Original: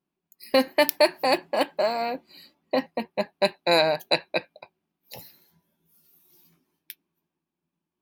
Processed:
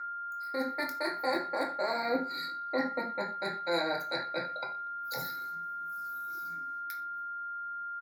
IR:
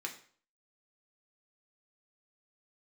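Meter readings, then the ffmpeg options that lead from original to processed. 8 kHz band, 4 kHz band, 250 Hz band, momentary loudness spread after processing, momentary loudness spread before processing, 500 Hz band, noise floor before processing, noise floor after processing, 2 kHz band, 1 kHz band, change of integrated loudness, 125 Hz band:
−11.5 dB, −11.0 dB, −7.0 dB, 7 LU, 11 LU, −11.0 dB, below −85 dBFS, −39 dBFS, −5.5 dB, −3.5 dB, −10.0 dB, −8.5 dB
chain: -filter_complex "[0:a]areverse,acompressor=threshold=-33dB:ratio=12,areverse,alimiter=level_in=3.5dB:limit=-24dB:level=0:latency=1:release=119,volume=-3.5dB,dynaudnorm=framelen=420:gausssize=3:maxgain=5.5dB,aeval=exprs='val(0)+0.0112*sin(2*PI*1400*n/s)':channel_layout=same,asuperstop=centerf=2900:order=8:qfactor=2,asplit=2[link_01][link_02];[link_02]adelay=23,volume=-11.5dB[link_03];[link_01][link_03]amix=inputs=2:normalize=0,asplit=2[link_04][link_05];[link_05]adelay=119,lowpass=frequency=4000:poles=1,volume=-20dB,asplit=2[link_06][link_07];[link_07]adelay=119,lowpass=frequency=4000:poles=1,volume=0.35,asplit=2[link_08][link_09];[link_09]adelay=119,lowpass=frequency=4000:poles=1,volume=0.35[link_10];[link_04][link_06][link_08][link_10]amix=inputs=4:normalize=0[link_11];[1:a]atrim=start_sample=2205,atrim=end_sample=4410[link_12];[link_11][link_12]afir=irnorm=-1:irlink=0,volume=3dB" -ar 44100 -c:a nellymoser

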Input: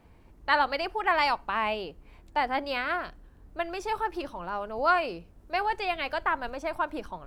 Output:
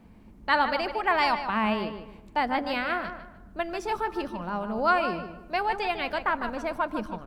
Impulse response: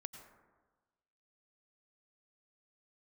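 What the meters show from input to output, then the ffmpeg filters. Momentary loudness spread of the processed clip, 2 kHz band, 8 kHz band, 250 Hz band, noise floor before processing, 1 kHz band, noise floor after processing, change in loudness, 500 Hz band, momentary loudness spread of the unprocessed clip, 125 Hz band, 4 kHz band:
11 LU, +1.0 dB, can't be measured, +7.0 dB, −55 dBFS, +1.0 dB, −51 dBFS, +1.5 dB, +1.5 dB, 11 LU, +6.5 dB, +0.5 dB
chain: -filter_complex "[0:a]equalizer=frequency=210:width_type=o:width=0.58:gain=13.5,asplit=2[link_01][link_02];[link_02]adelay=151,lowpass=frequency=3400:poles=1,volume=-9dB,asplit=2[link_03][link_04];[link_04]adelay=151,lowpass=frequency=3400:poles=1,volume=0.29,asplit=2[link_05][link_06];[link_06]adelay=151,lowpass=frequency=3400:poles=1,volume=0.29[link_07];[link_01][link_03][link_05][link_07]amix=inputs=4:normalize=0,asplit=2[link_08][link_09];[1:a]atrim=start_sample=2205[link_10];[link_09][link_10]afir=irnorm=-1:irlink=0,volume=-7.5dB[link_11];[link_08][link_11]amix=inputs=2:normalize=0,volume=-1.5dB"

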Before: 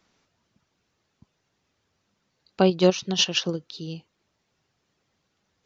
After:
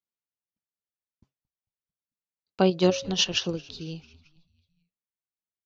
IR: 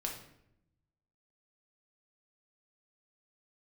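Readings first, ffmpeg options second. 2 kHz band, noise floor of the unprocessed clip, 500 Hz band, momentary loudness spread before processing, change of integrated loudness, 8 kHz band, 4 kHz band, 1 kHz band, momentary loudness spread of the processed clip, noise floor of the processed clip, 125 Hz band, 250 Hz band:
−2.0 dB, −75 dBFS, −2.5 dB, 17 LU, −2.0 dB, can't be measured, −2.0 dB, −2.0 dB, 17 LU, below −85 dBFS, −2.0 dB, −2.0 dB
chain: -filter_complex "[0:a]bandreject=frequency=136.4:width_type=h:width=4,bandreject=frequency=272.8:width_type=h:width=4,bandreject=frequency=409.2:width_type=h:width=4,bandreject=frequency=545.6:width_type=h:width=4,bandreject=frequency=682:width_type=h:width=4,agate=range=-33dB:threshold=-49dB:ratio=3:detection=peak,asplit=5[link_01][link_02][link_03][link_04][link_05];[link_02]adelay=222,afreqshift=-84,volume=-23.5dB[link_06];[link_03]adelay=444,afreqshift=-168,volume=-27.8dB[link_07];[link_04]adelay=666,afreqshift=-252,volume=-32.1dB[link_08];[link_05]adelay=888,afreqshift=-336,volume=-36.4dB[link_09];[link_01][link_06][link_07][link_08][link_09]amix=inputs=5:normalize=0,volume=-2dB"

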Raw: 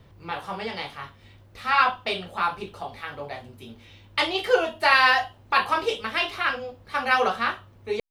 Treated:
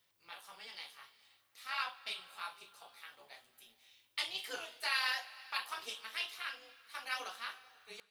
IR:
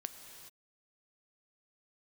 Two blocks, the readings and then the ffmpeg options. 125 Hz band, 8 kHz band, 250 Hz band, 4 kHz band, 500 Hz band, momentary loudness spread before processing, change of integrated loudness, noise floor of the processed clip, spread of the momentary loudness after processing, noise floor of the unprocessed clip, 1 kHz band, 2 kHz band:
below −30 dB, −4.5 dB, −29.0 dB, −11.0 dB, −27.5 dB, 17 LU, −16.0 dB, −74 dBFS, 19 LU, −53 dBFS, −21.0 dB, −16.5 dB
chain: -filter_complex "[0:a]aderivative,tremolo=f=220:d=0.667,asplit=2[link_01][link_02];[1:a]atrim=start_sample=2205,asetrate=34398,aresample=44100[link_03];[link_02][link_03]afir=irnorm=-1:irlink=0,volume=-7dB[link_04];[link_01][link_04]amix=inputs=2:normalize=0,volume=-4.5dB"

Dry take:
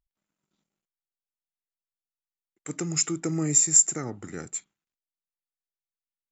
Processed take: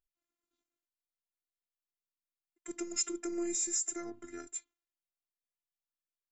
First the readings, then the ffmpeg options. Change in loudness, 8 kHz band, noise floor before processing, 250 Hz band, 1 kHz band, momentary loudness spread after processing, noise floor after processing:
−14.0 dB, can't be measured, below −85 dBFS, −8.0 dB, −8.5 dB, 15 LU, below −85 dBFS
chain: -af "afftfilt=real='re*lt(hypot(re,im),0.562)':imag='im*lt(hypot(re,im),0.562)':win_size=1024:overlap=0.75,afftfilt=real='hypot(re,im)*cos(PI*b)':imag='0':win_size=512:overlap=0.75,volume=-4.5dB"

